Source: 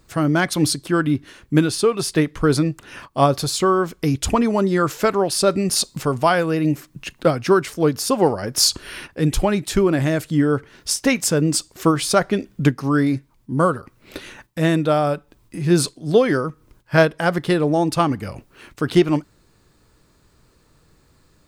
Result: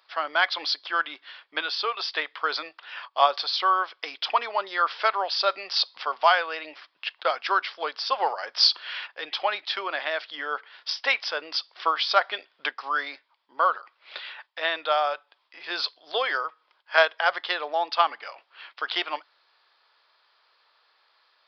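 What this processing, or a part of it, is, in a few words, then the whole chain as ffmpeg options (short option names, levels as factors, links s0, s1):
musical greeting card: -af "aresample=11025,aresample=44100,highpass=f=730:w=0.5412,highpass=f=730:w=1.3066,equalizer=f=3300:t=o:w=0.2:g=6.5"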